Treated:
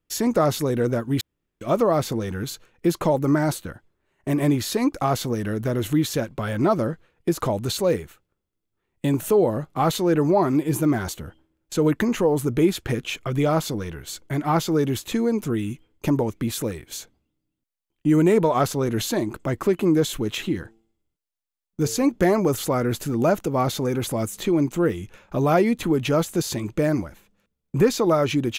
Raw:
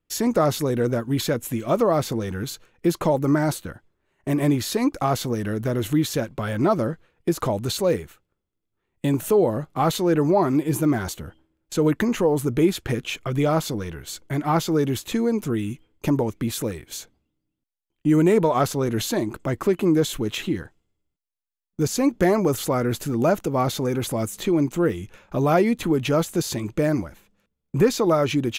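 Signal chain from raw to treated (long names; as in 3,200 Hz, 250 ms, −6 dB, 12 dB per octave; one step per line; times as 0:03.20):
0:01.21–0:01.61: fill with room tone
0:20.54–0:22.09: hum removal 112.2 Hz, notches 7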